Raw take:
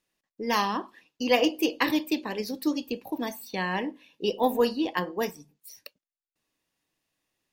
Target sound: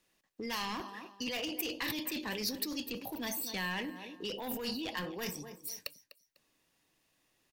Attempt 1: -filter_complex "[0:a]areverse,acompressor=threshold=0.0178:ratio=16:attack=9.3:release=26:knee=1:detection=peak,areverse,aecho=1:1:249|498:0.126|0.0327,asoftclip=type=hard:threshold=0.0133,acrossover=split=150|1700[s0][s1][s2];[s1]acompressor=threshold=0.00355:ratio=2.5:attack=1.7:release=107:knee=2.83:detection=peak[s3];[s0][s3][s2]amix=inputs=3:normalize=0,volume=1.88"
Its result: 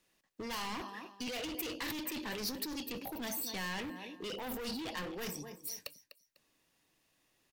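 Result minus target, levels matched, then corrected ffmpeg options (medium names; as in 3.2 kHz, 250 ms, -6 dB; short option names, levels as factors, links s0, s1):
hard clipper: distortion +9 dB
-filter_complex "[0:a]areverse,acompressor=threshold=0.0178:ratio=16:attack=9.3:release=26:knee=1:detection=peak,areverse,aecho=1:1:249|498:0.126|0.0327,asoftclip=type=hard:threshold=0.0299,acrossover=split=150|1700[s0][s1][s2];[s1]acompressor=threshold=0.00355:ratio=2.5:attack=1.7:release=107:knee=2.83:detection=peak[s3];[s0][s3][s2]amix=inputs=3:normalize=0,volume=1.88"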